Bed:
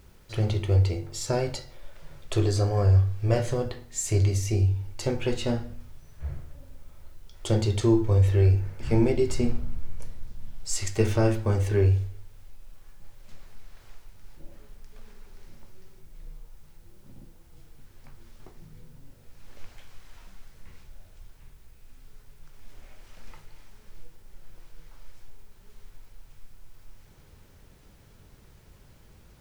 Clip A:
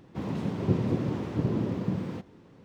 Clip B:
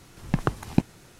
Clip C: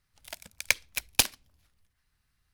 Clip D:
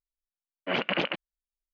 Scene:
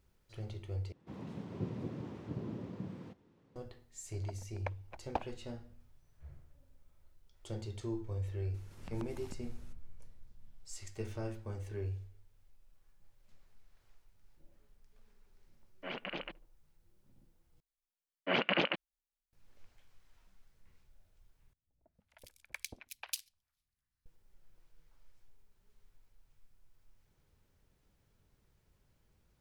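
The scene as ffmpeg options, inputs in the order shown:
ffmpeg -i bed.wav -i cue0.wav -i cue1.wav -i cue2.wav -i cue3.wav -filter_complex "[3:a]asplit=2[link_01][link_02];[4:a]asplit=2[link_03][link_04];[0:a]volume=-18dB[link_05];[link_01]lowpass=frequency=800:width_type=q:width=2.4[link_06];[2:a]acompressor=threshold=-31dB:ratio=6:attack=3.2:release=140:knee=1:detection=peak[link_07];[link_03]asplit=2[link_08][link_09];[link_09]adelay=74,lowpass=frequency=860:poles=1,volume=-22dB,asplit=2[link_10][link_11];[link_11]adelay=74,lowpass=frequency=860:poles=1,volume=0.52,asplit=2[link_12][link_13];[link_13]adelay=74,lowpass=frequency=860:poles=1,volume=0.52,asplit=2[link_14][link_15];[link_15]adelay=74,lowpass=frequency=860:poles=1,volume=0.52[link_16];[link_08][link_10][link_12][link_14][link_16]amix=inputs=5:normalize=0[link_17];[link_02]acrossover=split=620|2500[link_18][link_19][link_20];[link_19]adelay=310[link_21];[link_20]adelay=410[link_22];[link_18][link_21][link_22]amix=inputs=3:normalize=0[link_23];[link_05]asplit=4[link_24][link_25][link_26][link_27];[link_24]atrim=end=0.924[link_28];[1:a]atrim=end=2.64,asetpts=PTS-STARTPTS,volume=-13.5dB[link_29];[link_25]atrim=start=3.556:end=17.604[link_30];[link_04]atrim=end=1.73,asetpts=PTS-STARTPTS,volume=-3dB[link_31];[link_26]atrim=start=19.326:end=21.534[link_32];[link_23]atrim=end=2.53,asetpts=PTS-STARTPTS,volume=-15.5dB[link_33];[link_27]atrim=start=24.056[link_34];[link_06]atrim=end=2.53,asetpts=PTS-STARTPTS,volume=-6dB,afade=type=in:duration=0.004:curve=hsin,afade=type=out:start_time=2.526:duration=0.004:curve=hsin,adelay=3960[link_35];[link_07]atrim=end=1.19,asetpts=PTS-STARTPTS,volume=-13.5dB,afade=type=in:duration=0.004:curve=hsin,afade=type=out:start_time=1.186:duration=0.004:curve=hsin,adelay=8540[link_36];[link_17]atrim=end=1.73,asetpts=PTS-STARTPTS,volume=-14dB,afade=type=in:duration=0.004:curve=hsin,afade=type=out:start_time=1.726:duration=0.004:curve=hsin,adelay=15160[link_37];[link_28][link_29]acrossfade=duration=0.004:curve1=hsin:curve2=hsin[link_38];[link_38][link_30]acrossfade=duration=0.004:curve1=hsin:curve2=hsin[link_39];[link_39][link_31]acrossfade=duration=0.004:curve1=hsin:curve2=hsin[link_40];[link_40][link_32]acrossfade=duration=0.004:curve1=hsin:curve2=hsin[link_41];[link_41][link_33]acrossfade=duration=0.004:curve1=hsin:curve2=hsin[link_42];[link_42][link_34]acrossfade=duration=0.004:curve1=hsin:curve2=hsin[link_43];[link_43][link_35][link_36][link_37]amix=inputs=4:normalize=0" out.wav

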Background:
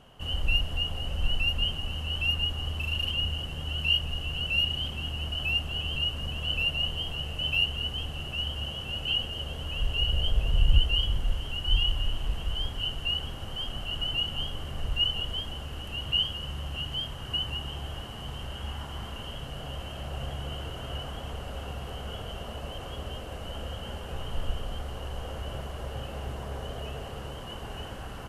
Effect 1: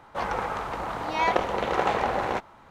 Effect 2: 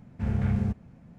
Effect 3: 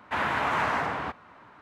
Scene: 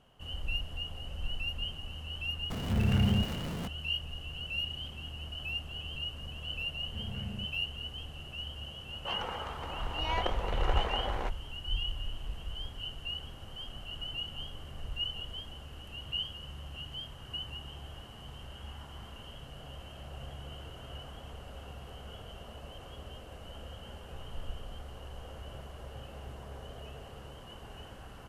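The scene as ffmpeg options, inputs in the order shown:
ffmpeg -i bed.wav -i cue0.wav -i cue1.wav -filter_complex "[2:a]asplit=2[link_01][link_02];[0:a]volume=-9dB[link_03];[link_01]aeval=exprs='val(0)+0.5*0.0316*sgn(val(0))':channel_layout=same,atrim=end=1.18,asetpts=PTS-STARTPTS,volume=-2.5dB,afade=type=in:duration=0.004:curve=hsin,afade=type=out:start_time=1.176:duration=0.004:curve=hsin,adelay=2500[link_04];[link_02]atrim=end=1.18,asetpts=PTS-STARTPTS,volume=-14.5dB,afade=type=in:duration=0.004:curve=hsin,afade=type=out:start_time=1.176:duration=0.004:curve=hsin,adelay=6730[link_05];[1:a]atrim=end=2.7,asetpts=PTS-STARTPTS,volume=-10dB,afade=type=in:duration=0.004:curve=hsin,afade=type=out:start_time=2.696:duration=0.004:curve=hsin,adelay=392490S[link_06];[link_03][link_04][link_05][link_06]amix=inputs=4:normalize=0" out.wav

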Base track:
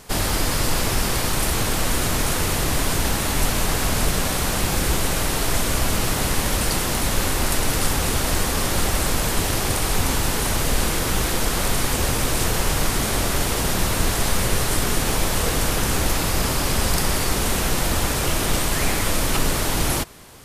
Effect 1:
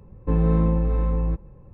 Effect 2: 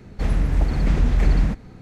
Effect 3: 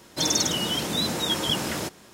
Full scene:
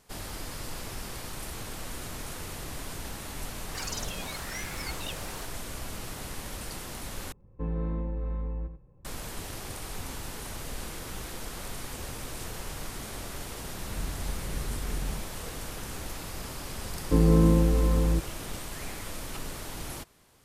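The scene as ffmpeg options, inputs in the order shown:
ffmpeg -i bed.wav -i cue0.wav -i cue1.wav -i cue2.wav -filter_complex "[1:a]asplit=2[link_01][link_02];[0:a]volume=-17dB[link_03];[3:a]aeval=exprs='val(0)*sin(2*PI*1100*n/s+1100*0.75/0.94*sin(2*PI*0.94*n/s))':channel_layout=same[link_04];[link_01]asplit=2[link_05][link_06];[link_06]adelay=87.46,volume=-9dB,highshelf=frequency=4000:gain=-1.97[link_07];[link_05][link_07]amix=inputs=2:normalize=0[link_08];[link_02]equalizer=frequency=320:width=1.9:gain=8.5[link_09];[link_03]asplit=2[link_10][link_11];[link_10]atrim=end=7.324[link_12];[link_08]atrim=end=1.73,asetpts=PTS-STARTPTS,volume=-11.5dB[link_13];[link_11]atrim=start=9.046[link_14];[link_04]atrim=end=2.13,asetpts=PTS-STARTPTS,volume=-11dB,afade=type=in:duration=0.004:curve=hsin,afade=type=out:start_time=2.126:duration=0.004:curve=hsin,adelay=157437S[link_15];[2:a]atrim=end=1.81,asetpts=PTS-STARTPTS,volume=-16.5dB,afade=type=in:duration=0.004:curve=hsin,afade=type=out:start_time=1.806:duration=0.004:curve=hsin,adelay=13670[link_16];[link_09]atrim=end=1.73,asetpts=PTS-STARTPTS,volume=-2dB,afade=type=in:duration=0.004:curve=hsin,afade=type=out:start_time=1.726:duration=0.004:curve=hsin,adelay=742644S[link_17];[link_12][link_13]acrossfade=duration=0.004:curve1=hsin:curve2=hsin[link_18];[link_18][link_14]acrossfade=duration=0.004:curve1=hsin:curve2=hsin[link_19];[link_19][link_15][link_16][link_17]amix=inputs=4:normalize=0" out.wav

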